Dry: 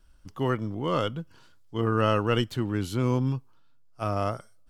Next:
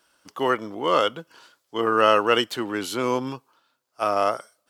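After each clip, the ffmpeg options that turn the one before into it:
ffmpeg -i in.wav -af "highpass=440,volume=8.5dB" out.wav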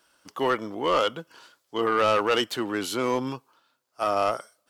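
ffmpeg -i in.wav -af "asoftclip=type=tanh:threshold=-15dB" out.wav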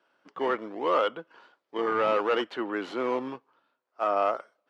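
ffmpeg -i in.wav -filter_complex "[0:a]asplit=2[link_01][link_02];[link_02]acrusher=samples=19:mix=1:aa=0.000001:lfo=1:lforange=30.4:lforate=0.66,volume=-8.5dB[link_03];[link_01][link_03]amix=inputs=2:normalize=0,highpass=290,lowpass=2400,volume=-3.5dB" out.wav

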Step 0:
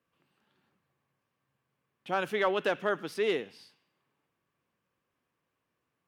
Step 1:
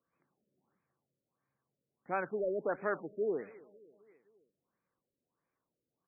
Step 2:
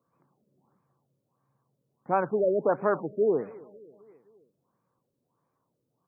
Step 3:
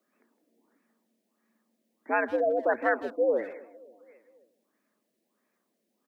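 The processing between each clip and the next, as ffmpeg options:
ffmpeg -i in.wav -af "equalizer=frequency=90:width_type=o:width=1.2:gain=-5,aecho=1:1:267|534|801|1068:0.0841|0.0471|0.0264|0.0148,afftfilt=real='re*lt(b*sr/1024,600*pow(2600/600,0.5+0.5*sin(2*PI*1.5*pts/sr)))':imag='im*lt(b*sr/1024,600*pow(2600/600,0.5+0.5*sin(2*PI*1.5*pts/sr)))':win_size=1024:overlap=0.75,volume=-4dB" out.wav
ffmpeg -i in.wav -af "equalizer=frequency=125:width_type=o:width=1:gain=12,equalizer=frequency=250:width_type=o:width=1:gain=4,equalizer=frequency=500:width_type=o:width=1:gain=4,equalizer=frequency=1000:width_type=o:width=1:gain=10,equalizer=frequency=2000:width_type=o:width=1:gain=-8,volume=3dB" out.wav
ffmpeg -i in.wav -filter_complex "[0:a]afreqshift=91,highshelf=frequency=1500:width_type=q:width=3:gain=7,asplit=2[link_01][link_02];[link_02]adelay=160,highpass=300,lowpass=3400,asoftclip=type=hard:threshold=-23.5dB,volume=-15dB[link_03];[link_01][link_03]amix=inputs=2:normalize=0" out.wav

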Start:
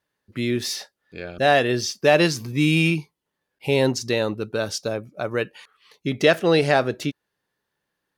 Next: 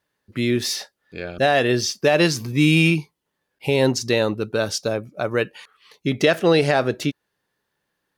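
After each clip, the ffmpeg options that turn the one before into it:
ffmpeg -i in.wav -af "alimiter=limit=-9.5dB:level=0:latency=1:release=111,volume=3dB" out.wav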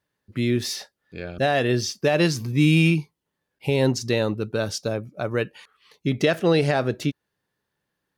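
ffmpeg -i in.wav -af "equalizer=frequency=97:width_type=o:width=2.8:gain=6,volume=-4.5dB" out.wav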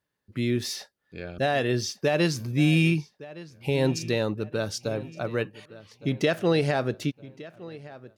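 ffmpeg -i in.wav -filter_complex "[0:a]asplit=2[link_01][link_02];[link_02]adelay=1164,lowpass=frequency=3900:poles=1,volume=-18dB,asplit=2[link_03][link_04];[link_04]adelay=1164,lowpass=frequency=3900:poles=1,volume=0.43,asplit=2[link_05][link_06];[link_06]adelay=1164,lowpass=frequency=3900:poles=1,volume=0.43,asplit=2[link_07][link_08];[link_08]adelay=1164,lowpass=frequency=3900:poles=1,volume=0.43[link_09];[link_01][link_03][link_05][link_07][link_09]amix=inputs=5:normalize=0,volume=-3.5dB" out.wav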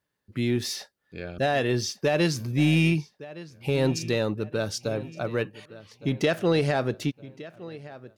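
ffmpeg -i in.wav -af "asoftclip=type=tanh:threshold=-13dB,volume=1dB" out.wav

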